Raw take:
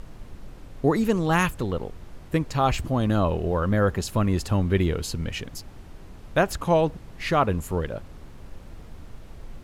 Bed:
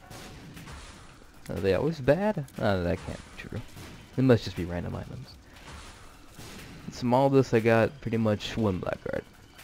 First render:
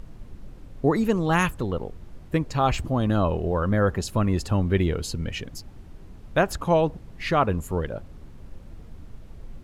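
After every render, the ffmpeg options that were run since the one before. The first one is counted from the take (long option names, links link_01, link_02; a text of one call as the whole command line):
ffmpeg -i in.wav -af "afftdn=noise_reduction=6:noise_floor=-44" out.wav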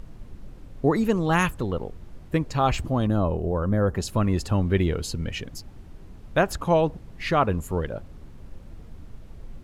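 ffmpeg -i in.wav -filter_complex "[0:a]asettb=1/sr,asplit=3[link_01][link_02][link_03];[link_01]atrim=end=3.074[link_04];[link_02]atrim=start=3.07:end=3.95,asetpts=PTS-STARTPTS,afade=type=in:duration=0.004:curve=qsin,afade=type=out:start_time=0.876:duration=0.004:curve=qsin,equalizer=frequency=2700:width=0.56:gain=-10[link_05];[link_03]atrim=start=3.946[link_06];[link_04][link_05]acrossfade=duration=0.004:curve1=hsin:curve2=qsin[link_07];[link_07][link_06]acrossfade=duration=0.004:curve1=qsin:curve2=hsin" out.wav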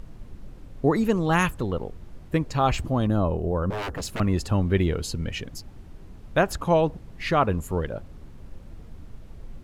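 ffmpeg -i in.wav -filter_complex "[0:a]asettb=1/sr,asplit=3[link_01][link_02][link_03];[link_01]atrim=end=3.704[link_04];[link_02]atrim=start=3.7:end=4.2,asetpts=PTS-STARTPTS,afade=type=in:duration=0.004:curve=qsin,afade=type=out:start_time=0.496:duration=0.004:curve=qsin,aeval=exprs='0.0562*(abs(mod(val(0)/0.0562+3,4)-2)-1)':channel_layout=same[link_05];[link_03]atrim=start=4.196[link_06];[link_04][link_05]acrossfade=duration=0.004:curve1=hsin:curve2=qsin[link_07];[link_07][link_06]acrossfade=duration=0.004:curve1=qsin:curve2=hsin" out.wav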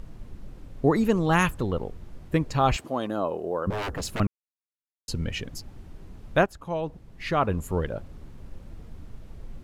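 ffmpeg -i in.wav -filter_complex "[0:a]asettb=1/sr,asplit=3[link_01][link_02][link_03];[link_01]atrim=end=2.764[link_04];[link_02]atrim=start=2.76:end=3.67,asetpts=PTS-STARTPTS,afade=type=in:duration=0.004:curve=qsin,afade=type=out:start_time=0.906:duration=0.004:curve=qsin,highpass=340[link_05];[link_03]atrim=start=3.666[link_06];[link_04][link_05]acrossfade=duration=0.004:curve1=hsin:curve2=qsin[link_07];[link_07][link_06]acrossfade=duration=0.004:curve1=qsin:curve2=hsin,asplit=4[link_08][link_09][link_10][link_11];[link_08]atrim=end=4.27,asetpts=PTS-STARTPTS,afade=type=out:start_time=4.266:duration=0.004:curve=hsin[link_12];[link_09]atrim=start=4.27:end=5.08,asetpts=PTS-STARTPTS,volume=0[link_13];[link_10]atrim=start=5.08:end=6.46,asetpts=PTS-STARTPTS,afade=type=in:duration=0.004:curve=hsin,afade=type=out:start_time=1.376:duration=0.004:curve=hsin:silence=0.141254[link_14];[link_11]atrim=start=6.46,asetpts=PTS-STARTPTS,afade=type=in:duration=1.35:silence=0.141254[link_15];[link_12][link_13][link_14][link_15]concat=n=4:v=0:a=1" out.wav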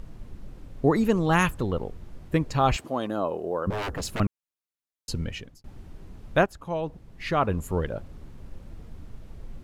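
ffmpeg -i in.wav -filter_complex "[0:a]asplit=2[link_01][link_02];[link_01]atrim=end=5.64,asetpts=PTS-STARTPTS,afade=type=out:start_time=5.17:duration=0.47[link_03];[link_02]atrim=start=5.64,asetpts=PTS-STARTPTS,afade=type=in:duration=0.004:curve=hsin[link_04];[link_03][link_04]concat=n=2:v=0:a=1" out.wav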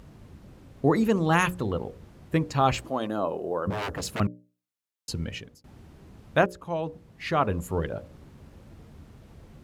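ffmpeg -i in.wav -af "highpass=72,bandreject=frequency=60:width_type=h:width=6,bandreject=frequency=120:width_type=h:width=6,bandreject=frequency=180:width_type=h:width=6,bandreject=frequency=240:width_type=h:width=6,bandreject=frequency=300:width_type=h:width=6,bandreject=frequency=360:width_type=h:width=6,bandreject=frequency=420:width_type=h:width=6,bandreject=frequency=480:width_type=h:width=6,bandreject=frequency=540:width_type=h:width=6,bandreject=frequency=600:width_type=h:width=6" out.wav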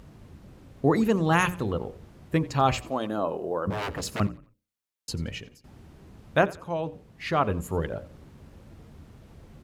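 ffmpeg -i in.wav -filter_complex "[0:a]asplit=4[link_01][link_02][link_03][link_04];[link_02]adelay=88,afreqshift=-30,volume=-20dB[link_05];[link_03]adelay=176,afreqshift=-60,volume=-29.9dB[link_06];[link_04]adelay=264,afreqshift=-90,volume=-39.8dB[link_07];[link_01][link_05][link_06][link_07]amix=inputs=4:normalize=0" out.wav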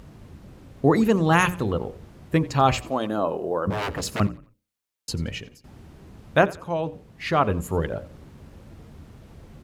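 ffmpeg -i in.wav -af "volume=3.5dB" out.wav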